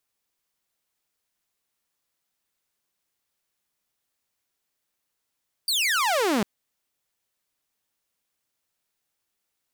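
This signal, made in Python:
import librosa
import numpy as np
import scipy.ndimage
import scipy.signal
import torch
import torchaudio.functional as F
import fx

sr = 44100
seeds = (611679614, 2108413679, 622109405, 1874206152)

y = fx.laser_zap(sr, level_db=-18, start_hz=4800.0, end_hz=190.0, length_s=0.75, wave='saw')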